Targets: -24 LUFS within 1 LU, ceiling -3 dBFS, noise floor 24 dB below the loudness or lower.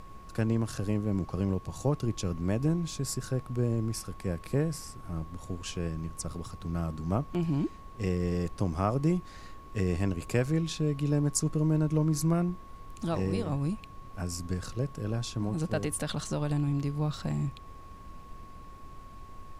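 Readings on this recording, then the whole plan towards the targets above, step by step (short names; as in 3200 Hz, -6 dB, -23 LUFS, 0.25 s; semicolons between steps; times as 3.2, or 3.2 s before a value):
steady tone 1100 Hz; tone level -50 dBFS; noise floor -48 dBFS; noise floor target -56 dBFS; loudness -31.5 LUFS; peak -12.5 dBFS; loudness target -24.0 LUFS
-> notch 1100 Hz, Q 30; noise print and reduce 8 dB; gain +7.5 dB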